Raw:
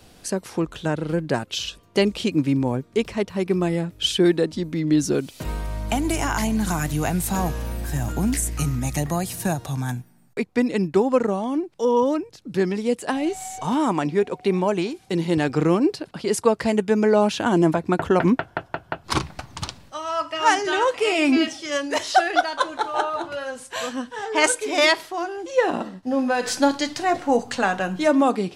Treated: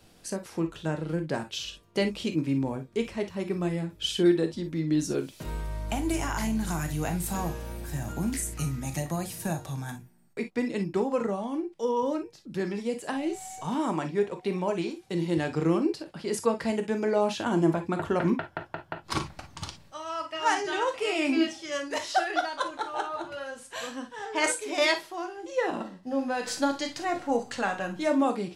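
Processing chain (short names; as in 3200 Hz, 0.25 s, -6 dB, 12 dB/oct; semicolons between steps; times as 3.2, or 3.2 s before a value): non-linear reverb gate 80 ms flat, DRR 6 dB; gain -8 dB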